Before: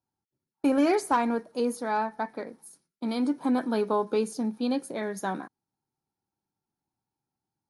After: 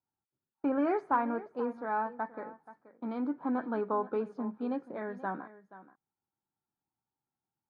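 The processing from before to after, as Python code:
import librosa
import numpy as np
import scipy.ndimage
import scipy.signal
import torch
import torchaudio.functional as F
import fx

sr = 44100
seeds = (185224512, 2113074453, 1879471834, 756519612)

p1 = fx.lowpass_res(x, sr, hz=1400.0, q=1.7)
p2 = p1 + fx.echo_single(p1, sr, ms=479, db=-16.5, dry=0)
y = p2 * 10.0 ** (-7.0 / 20.0)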